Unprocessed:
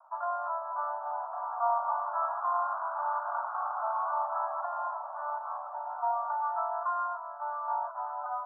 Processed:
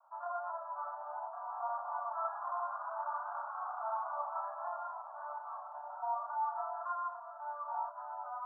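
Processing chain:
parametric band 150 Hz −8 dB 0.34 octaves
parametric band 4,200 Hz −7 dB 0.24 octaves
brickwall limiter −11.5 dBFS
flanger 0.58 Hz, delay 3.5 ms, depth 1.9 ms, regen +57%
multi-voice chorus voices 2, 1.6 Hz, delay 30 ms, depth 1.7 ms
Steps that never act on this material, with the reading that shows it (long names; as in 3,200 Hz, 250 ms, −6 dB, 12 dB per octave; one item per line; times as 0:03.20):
parametric band 150 Hz: nothing at its input below 540 Hz
parametric band 4,200 Hz: nothing at its input above 1,600 Hz
brickwall limiter −11.5 dBFS: peak of its input −18.0 dBFS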